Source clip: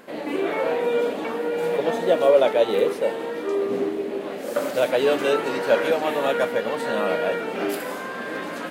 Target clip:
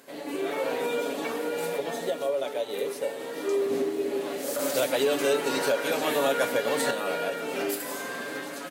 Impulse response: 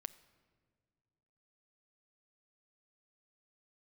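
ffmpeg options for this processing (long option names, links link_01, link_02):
-filter_complex "[0:a]highpass=110,bass=frequency=250:gain=-1,treble=frequency=4000:gain=12,aecho=1:1:7.1:0.48,dynaudnorm=framelen=140:gausssize=11:maxgain=8.5dB,alimiter=limit=-11dB:level=0:latency=1:release=374,asettb=1/sr,asplit=3[link_01][link_02][link_03];[link_01]atrim=end=4.594[link_04];[link_02]atrim=start=4.59:end=6.91,asetpts=PTS-STARTPTS,afade=type=in:duration=0.004:curve=qsin,afade=type=out:start_time=2.316:duration=0.004:curve=qsin,acontrast=24[link_05];[link_03]atrim=start=6.906[link_06];[link_04][link_05]acrossfade=duration=0.004:curve1=hsin:curve2=qsin[link_07];[link_07][link_06]acrossfade=duration=0.004:curve1=qsin:curve2=hsin[link_08];[1:a]atrim=start_sample=2205,asetrate=40131,aresample=44100[link_09];[link_08][link_09]afir=irnorm=-1:irlink=0,volume=-5dB"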